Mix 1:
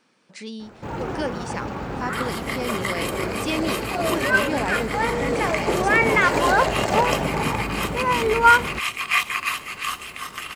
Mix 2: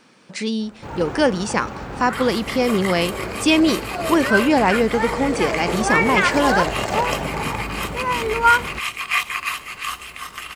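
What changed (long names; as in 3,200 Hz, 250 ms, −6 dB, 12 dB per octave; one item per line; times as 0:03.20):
speech +10.5 dB
first sound: add low-shelf EQ 450 Hz −5.5 dB
master: add low-shelf EQ 110 Hz +7.5 dB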